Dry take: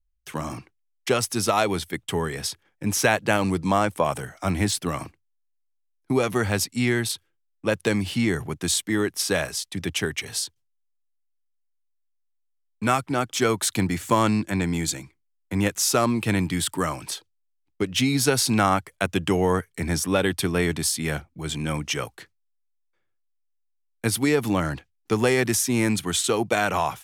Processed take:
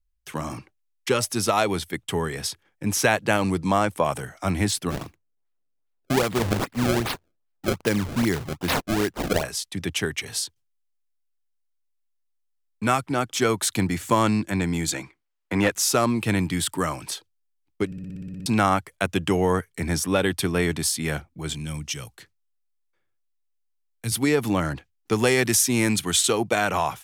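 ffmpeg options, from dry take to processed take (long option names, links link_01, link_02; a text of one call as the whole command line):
ffmpeg -i in.wav -filter_complex "[0:a]asettb=1/sr,asplit=3[link_01][link_02][link_03];[link_01]atrim=end=0.574[link_04];[link_02]atrim=start=0.57:end=1.3,asetpts=PTS-STARTPTS,afade=type=in:duration=0.004:curve=qsin,afade=type=out:start_time=0.726:duration=0.004:curve=qsin,asuperstop=centerf=680:order=20:qfactor=5[link_05];[link_03]atrim=start=1.296[link_06];[link_04][link_05]acrossfade=duration=0.004:curve1=hsin:curve2=qsin[link_07];[link_07][link_06]acrossfade=duration=0.004:curve1=qsin:curve2=hsin,asplit=3[link_08][link_09][link_10];[link_08]afade=type=out:start_time=4.9:duration=0.02[link_11];[link_09]acrusher=samples=27:mix=1:aa=0.000001:lfo=1:lforange=43.2:lforate=2.5,afade=type=in:start_time=4.9:duration=0.02,afade=type=out:start_time=9.42:duration=0.02[link_12];[link_10]afade=type=in:start_time=9.42:duration=0.02[link_13];[link_11][link_12][link_13]amix=inputs=3:normalize=0,asettb=1/sr,asplit=3[link_14][link_15][link_16];[link_14]atrim=end=14.924[link_17];[link_15]atrim=start=14.92:end=15.72,asetpts=PTS-STARTPTS,afade=type=in:duration=0.004:curve=qsin,afade=type=out:start_time=0.796:duration=0.004:curve=qsin,asplit=2[link_18][link_19];[link_19]highpass=frequency=720:poles=1,volume=17dB,asoftclip=type=tanh:threshold=-7.5dB[link_20];[link_18][link_20]amix=inputs=2:normalize=0,lowpass=frequency=1800:poles=1,volume=-6dB[link_21];[link_16]atrim=start=15.716[link_22];[link_17][link_21]acrossfade=duration=0.004:curve1=hsin:curve2=qsin[link_23];[link_23][link_22]acrossfade=duration=0.004:curve1=qsin:curve2=hsin,asettb=1/sr,asplit=3[link_24][link_25][link_26];[link_24]atrim=end=21.534[link_27];[link_25]atrim=start=21.53:end=24.12,asetpts=PTS-STARTPTS,afade=type=in:duration=0.004:curve=qsin,afade=type=out:start_time=2.586:duration=0.004:curve=qsin,acrossover=split=180|3000[link_28][link_29][link_30];[link_29]acompressor=threshold=-50dB:ratio=2:attack=3.2:release=140:knee=2.83:detection=peak[link_31];[link_28][link_31][link_30]amix=inputs=3:normalize=0[link_32];[link_26]atrim=start=24.116[link_33];[link_27][link_32]acrossfade=duration=0.004:curve1=hsin:curve2=qsin[link_34];[link_34][link_33]acrossfade=duration=0.004:curve1=qsin:curve2=hsin,asettb=1/sr,asplit=3[link_35][link_36][link_37];[link_35]atrim=end=24.734[link_38];[link_36]atrim=start=24.73:end=26.33,asetpts=PTS-STARTPTS,afade=type=in:duration=0.004:curve=qsin,afade=type=out:start_time=1.596:duration=0.004:curve=qsin,adynamicequalizer=threshold=0.0141:dfrequency=2100:dqfactor=0.7:tfrequency=2100:tqfactor=0.7:attack=5:release=100:ratio=0.375:range=2:mode=boostabove:tftype=highshelf[link_39];[link_37]atrim=start=26.326[link_40];[link_38][link_39]acrossfade=duration=0.004:curve1=hsin:curve2=qsin[link_41];[link_41][link_40]acrossfade=duration=0.004:curve1=qsin:curve2=hsin,asplit=11[link_42][link_43][link_44][link_45][link_46][link_47][link_48][link_49][link_50][link_51][link_52];[link_42]atrim=end=17.922[link_53];[link_43]atrim=start=17.858:end=17.922[link_54];[link_44]atrim=start=17.858:end=17.922[link_55];[link_45]atrim=start=17.858:end=17.922[link_56];[link_46]atrim=start=17.858:end=17.922[link_57];[link_47]atrim=start=17.858:end=17.922[link_58];[link_48]atrim=start=17.858:end=17.922[link_59];[link_49]atrim=start=17.858:end=17.922[link_60];[link_50]atrim=start=17.858:end=17.922[link_61];[link_51]atrim=start=17.858:end=17.922[link_62];[link_52]atrim=start=18.458[link_63];[link_53][link_54]acrossfade=duration=0.004:curve1=hsin:curve2=hsin[link_64];[link_64][link_55]acrossfade=duration=0.004:curve1=hsin:curve2=hsin[link_65];[link_65][link_56]acrossfade=duration=0.004:curve1=hsin:curve2=hsin[link_66];[link_66][link_57]acrossfade=duration=0.004:curve1=hsin:curve2=hsin[link_67];[link_67][link_58]acrossfade=duration=0.004:curve1=hsin:curve2=hsin[link_68];[link_68][link_59]acrossfade=duration=0.004:curve1=hsin:curve2=hsin[link_69];[link_69][link_60]acrossfade=duration=0.004:curve1=hsin:curve2=hsin[link_70];[link_70][link_61]acrossfade=duration=0.004:curve1=hsin:curve2=hsin[link_71];[link_71][link_62]acrossfade=duration=0.004:curve1=hsin:curve2=hsin[link_72];[link_72][link_63]acrossfade=duration=0.004:curve1=hsin:curve2=hsin" out.wav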